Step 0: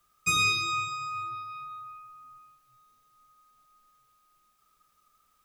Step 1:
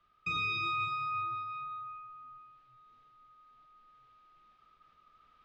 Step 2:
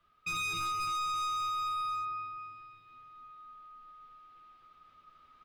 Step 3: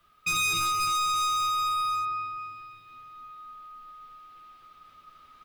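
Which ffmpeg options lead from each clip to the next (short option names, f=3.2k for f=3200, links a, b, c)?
-af "lowpass=f=3.6k:w=0.5412,lowpass=f=3.6k:w=1.3066,alimiter=level_in=2.5dB:limit=-24dB:level=0:latency=1:release=15,volume=-2.5dB,areverse,acompressor=mode=upward:threshold=-57dB:ratio=2.5,areverse"
-filter_complex "[0:a]asplit=2[a][b];[b]adelay=12,volume=-4dB[c];[a][c]amix=inputs=2:normalize=0,aecho=1:1:264|528|792|1056|1320|1584|1848|2112:0.668|0.381|0.217|0.124|0.0706|0.0402|0.0229|0.0131,asoftclip=type=hard:threshold=-32.5dB"
-af "highshelf=f=5.3k:g=10,volume=6dB"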